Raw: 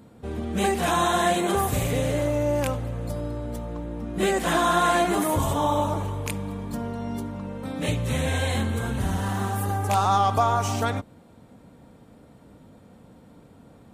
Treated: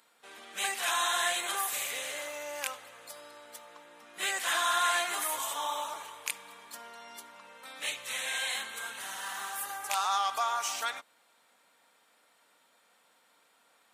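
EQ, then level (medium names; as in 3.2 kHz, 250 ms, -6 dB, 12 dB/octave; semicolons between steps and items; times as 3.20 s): high-pass 1.5 kHz 12 dB/octave; 0.0 dB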